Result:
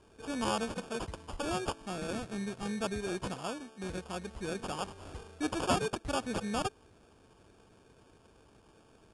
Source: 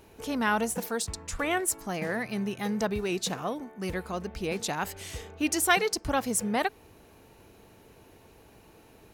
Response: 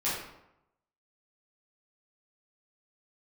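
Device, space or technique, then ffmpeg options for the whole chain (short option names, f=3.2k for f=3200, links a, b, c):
crushed at another speed: -af "asetrate=88200,aresample=44100,acrusher=samples=11:mix=1:aa=0.000001,asetrate=22050,aresample=44100,volume=-6dB"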